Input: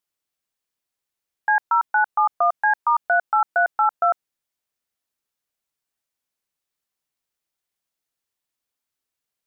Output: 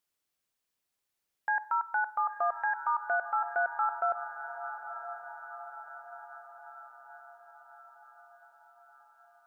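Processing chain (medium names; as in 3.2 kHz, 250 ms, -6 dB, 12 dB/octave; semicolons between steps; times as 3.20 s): peak limiter -21.5 dBFS, peak gain reduction 10.5 dB; echo that smears into a reverb 965 ms, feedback 58%, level -10.5 dB; on a send at -17 dB: reverberation RT60 0.75 s, pre-delay 46 ms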